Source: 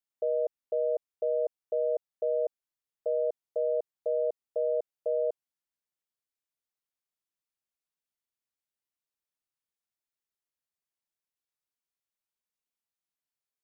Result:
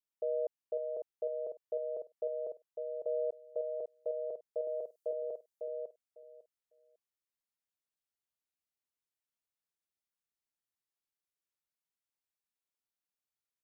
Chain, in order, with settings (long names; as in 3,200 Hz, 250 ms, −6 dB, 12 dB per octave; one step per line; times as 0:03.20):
0:04.67–0:05.13: bass and treble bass −6 dB, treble +11 dB
repeating echo 551 ms, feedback 17%, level −5 dB
level −5.5 dB